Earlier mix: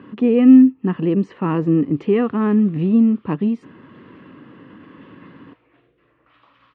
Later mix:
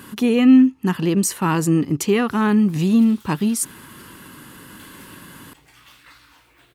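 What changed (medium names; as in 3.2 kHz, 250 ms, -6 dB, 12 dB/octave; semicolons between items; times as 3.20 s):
background: entry +0.85 s; master: remove cabinet simulation 110–2300 Hz, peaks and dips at 280 Hz +4 dB, 480 Hz +4 dB, 880 Hz -6 dB, 1.5 kHz -9 dB, 2.2 kHz -5 dB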